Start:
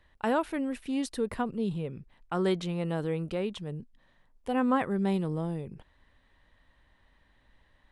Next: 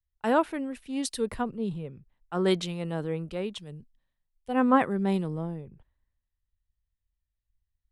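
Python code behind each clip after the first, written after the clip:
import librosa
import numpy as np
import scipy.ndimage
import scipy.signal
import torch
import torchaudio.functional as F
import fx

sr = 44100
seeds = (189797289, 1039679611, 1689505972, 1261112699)

y = fx.band_widen(x, sr, depth_pct=100)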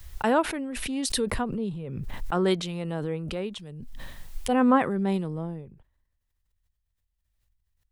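y = fx.pre_swell(x, sr, db_per_s=23.0)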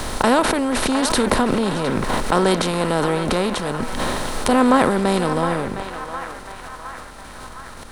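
y = fx.bin_compress(x, sr, power=0.4)
y = fx.echo_banded(y, sr, ms=711, feedback_pct=66, hz=1500.0, wet_db=-7.0)
y = y * 10.0 ** (3.0 / 20.0)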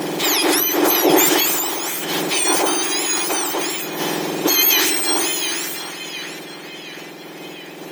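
y = fx.octave_mirror(x, sr, pivot_hz=1800.0)
y = fx.sustainer(y, sr, db_per_s=21.0)
y = y * 10.0 ** (3.5 / 20.0)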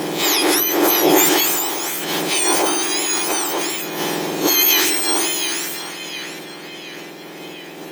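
y = fx.spec_swells(x, sr, rise_s=0.31)
y = y * 10.0 ** (-1.0 / 20.0)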